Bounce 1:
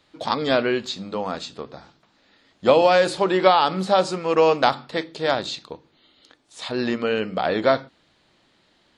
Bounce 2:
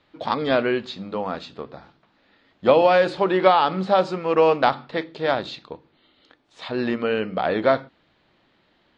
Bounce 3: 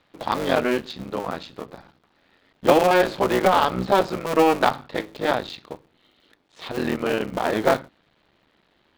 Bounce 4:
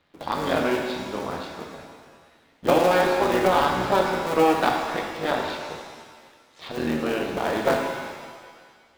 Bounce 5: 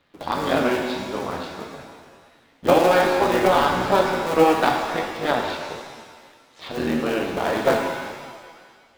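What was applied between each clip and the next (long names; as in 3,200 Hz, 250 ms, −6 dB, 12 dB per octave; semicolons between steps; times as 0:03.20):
low-pass filter 3,200 Hz 12 dB per octave
sub-harmonics by changed cycles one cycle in 3, muted; level +1 dB
reverb with rising layers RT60 1.6 s, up +7 semitones, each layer −8 dB, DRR 1.5 dB; level −4 dB
flanger 1.7 Hz, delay 6.7 ms, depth 5.8 ms, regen +67%; level +6.5 dB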